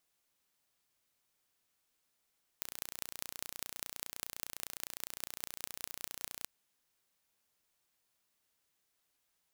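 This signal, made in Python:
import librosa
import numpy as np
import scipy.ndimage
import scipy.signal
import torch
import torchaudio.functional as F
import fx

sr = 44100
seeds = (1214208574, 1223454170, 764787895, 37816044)

y = fx.impulse_train(sr, length_s=3.85, per_s=29.8, accent_every=6, level_db=-9.5)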